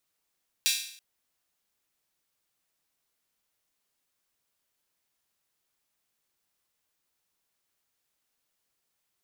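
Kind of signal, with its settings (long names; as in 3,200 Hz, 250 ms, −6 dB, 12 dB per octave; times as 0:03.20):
open synth hi-hat length 0.33 s, high-pass 3,100 Hz, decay 0.61 s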